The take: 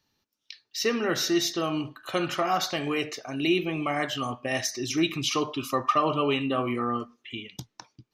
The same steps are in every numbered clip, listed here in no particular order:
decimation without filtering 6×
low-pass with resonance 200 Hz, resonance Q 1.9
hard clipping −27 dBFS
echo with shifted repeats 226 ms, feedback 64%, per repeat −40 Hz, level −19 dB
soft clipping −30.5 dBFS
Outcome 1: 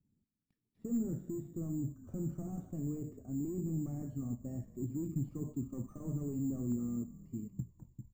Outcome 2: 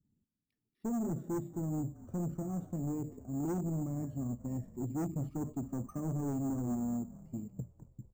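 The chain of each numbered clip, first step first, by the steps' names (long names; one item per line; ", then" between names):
soft clipping, then low-pass with resonance, then decimation without filtering, then echo with shifted repeats, then hard clipping
low-pass with resonance, then hard clipping, then soft clipping, then echo with shifted repeats, then decimation without filtering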